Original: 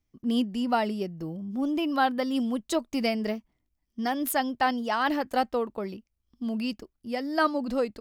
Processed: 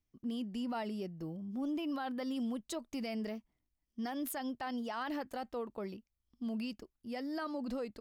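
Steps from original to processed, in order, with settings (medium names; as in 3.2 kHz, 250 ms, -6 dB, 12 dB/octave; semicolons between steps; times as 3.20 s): peak limiter -24 dBFS, peak gain reduction 11 dB; trim -7 dB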